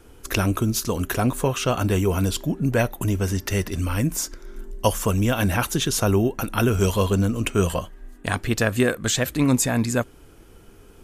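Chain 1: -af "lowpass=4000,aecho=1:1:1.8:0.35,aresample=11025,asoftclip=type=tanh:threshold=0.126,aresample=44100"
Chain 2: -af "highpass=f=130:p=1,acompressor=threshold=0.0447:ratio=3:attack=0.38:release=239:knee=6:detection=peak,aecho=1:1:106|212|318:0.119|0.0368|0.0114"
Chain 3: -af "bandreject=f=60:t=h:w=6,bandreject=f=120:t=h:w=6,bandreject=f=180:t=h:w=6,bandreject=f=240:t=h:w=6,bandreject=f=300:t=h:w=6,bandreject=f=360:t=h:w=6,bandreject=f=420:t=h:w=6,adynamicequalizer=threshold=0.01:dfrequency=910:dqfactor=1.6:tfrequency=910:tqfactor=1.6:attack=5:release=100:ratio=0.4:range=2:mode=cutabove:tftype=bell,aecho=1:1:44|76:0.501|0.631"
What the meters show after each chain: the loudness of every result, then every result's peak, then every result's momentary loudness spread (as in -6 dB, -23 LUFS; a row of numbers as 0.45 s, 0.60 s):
-26.0 LUFS, -32.5 LUFS, -21.5 LUFS; -16.0 dBFS, -17.0 dBFS, -5.0 dBFS; 6 LU, 8 LU, 6 LU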